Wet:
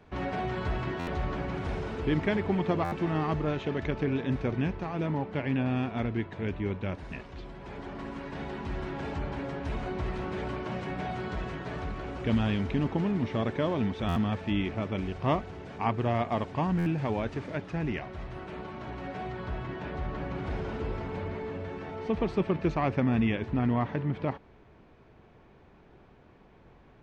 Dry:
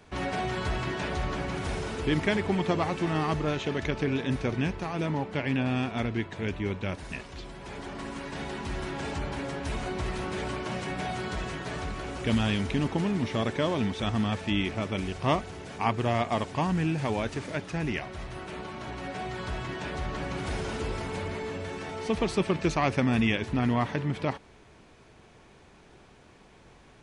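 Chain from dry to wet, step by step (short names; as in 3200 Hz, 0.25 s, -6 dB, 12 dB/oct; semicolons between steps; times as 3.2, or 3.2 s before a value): tape spacing loss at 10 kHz 22 dB, from 19.31 s at 10 kHz 30 dB; stuck buffer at 0.99/2.84/14.08/16.78, samples 512, times 6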